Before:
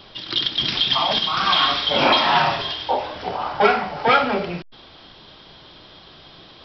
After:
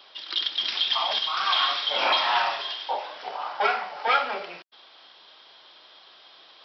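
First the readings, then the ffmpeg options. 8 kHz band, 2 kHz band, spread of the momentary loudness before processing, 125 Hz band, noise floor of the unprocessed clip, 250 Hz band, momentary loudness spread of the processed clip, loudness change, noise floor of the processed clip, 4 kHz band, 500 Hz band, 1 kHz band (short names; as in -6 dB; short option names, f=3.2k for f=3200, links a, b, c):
n/a, -5.0 dB, 11 LU, under -25 dB, -46 dBFS, -20.5 dB, 12 LU, -5.5 dB, -53 dBFS, -5.0 dB, -10.0 dB, -6.0 dB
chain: -af "highpass=660,volume=-5dB"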